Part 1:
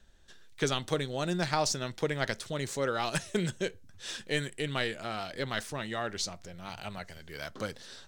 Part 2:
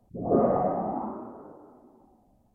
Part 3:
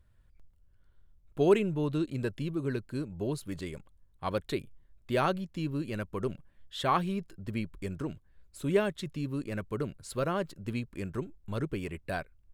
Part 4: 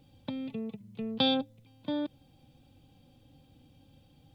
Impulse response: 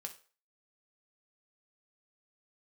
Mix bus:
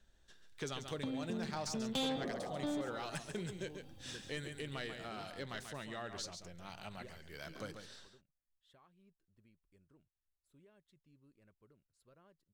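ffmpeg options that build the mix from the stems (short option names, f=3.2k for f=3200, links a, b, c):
-filter_complex "[0:a]volume=-7.5dB,asplit=3[a][b][c];[b]volume=-9.5dB[d];[1:a]adelay=1900,volume=-15dB[e];[2:a]alimiter=limit=-23.5dB:level=0:latency=1:release=240,adelay=1900,volume=-19dB[f];[3:a]adelay=750,volume=1.5dB,asplit=2[g][h];[h]volume=-17dB[i];[c]apad=whole_len=636713[j];[f][j]sidechaingate=range=-14dB:threshold=-50dB:ratio=16:detection=peak[k];[d][i]amix=inputs=2:normalize=0,aecho=0:1:139:1[l];[a][e][k][g][l]amix=inputs=5:normalize=0,asoftclip=type=tanh:threshold=-26dB,acompressor=threshold=-44dB:ratio=1.5"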